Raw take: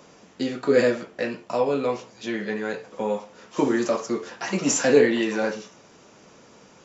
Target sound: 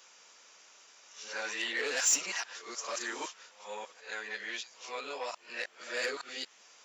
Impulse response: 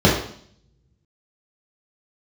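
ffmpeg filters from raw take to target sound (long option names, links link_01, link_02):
-filter_complex "[0:a]areverse,asplit=2[link_01][link_02];[link_02]highpass=frequency=720:poles=1,volume=15dB,asoftclip=type=tanh:threshold=-4.5dB[link_03];[link_01][link_03]amix=inputs=2:normalize=0,lowpass=frequency=2400:poles=1,volume=-6dB,aderivative"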